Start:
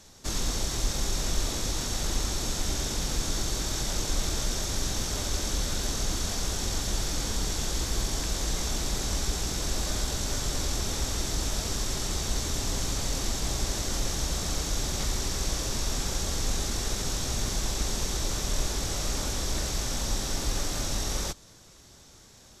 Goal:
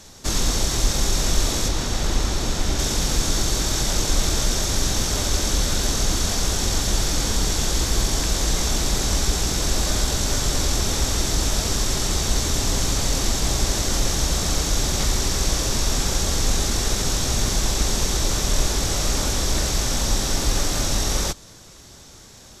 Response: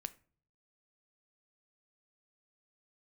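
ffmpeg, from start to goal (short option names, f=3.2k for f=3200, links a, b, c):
-filter_complex "[0:a]asettb=1/sr,asplit=3[a][b][c];[a]atrim=end=1.684[d];[b]atrim=start=1.68:end=2.79,asetpts=PTS-STARTPTS,afade=t=in:d=0.004:c=qsin,afade=t=out:st=1.106:d=0.004:c=qsin,highshelf=f=5.2k:g=-8[e];[c]atrim=start=2.786[f];[d][e]acrossfade=d=0.004:c1=hsin:c2=qsin[g];[g][f]acrossfade=d=0.004:c1=qsin:c2=hsin,volume=8dB"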